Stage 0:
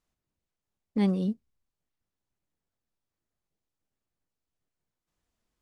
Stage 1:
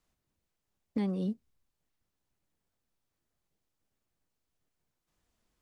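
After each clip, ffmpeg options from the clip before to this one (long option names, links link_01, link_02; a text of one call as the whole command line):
ffmpeg -i in.wav -filter_complex "[0:a]acrossover=split=250|1800[link_01][link_02][link_03];[link_01]acompressor=threshold=-39dB:ratio=4[link_04];[link_02]acompressor=threshold=-40dB:ratio=4[link_05];[link_03]acompressor=threshold=-58dB:ratio=4[link_06];[link_04][link_05][link_06]amix=inputs=3:normalize=0,volume=3.5dB" out.wav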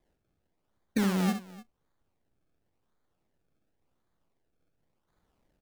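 ffmpeg -i in.wav -filter_complex "[0:a]acrusher=samples=31:mix=1:aa=0.000001:lfo=1:lforange=31:lforate=0.92,asplit=2[link_01][link_02];[link_02]aecho=0:1:65|299:0.376|0.106[link_03];[link_01][link_03]amix=inputs=2:normalize=0,volume=4dB" out.wav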